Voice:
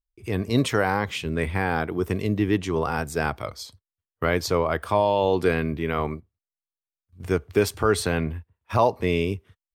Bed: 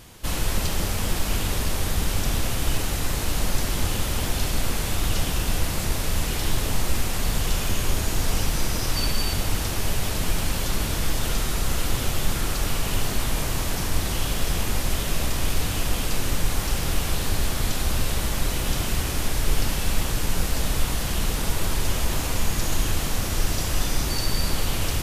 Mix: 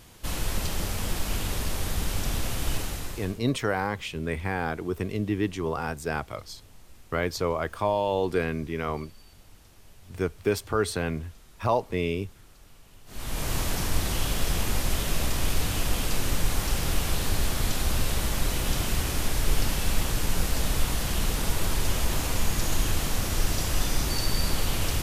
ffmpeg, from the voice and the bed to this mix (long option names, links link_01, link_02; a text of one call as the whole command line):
ffmpeg -i stem1.wav -i stem2.wav -filter_complex "[0:a]adelay=2900,volume=-4.5dB[link_01];[1:a]volume=22dB,afade=type=out:start_time=2.75:duration=0.65:silence=0.0630957,afade=type=in:start_time=13.06:duration=0.48:silence=0.0473151[link_02];[link_01][link_02]amix=inputs=2:normalize=0" out.wav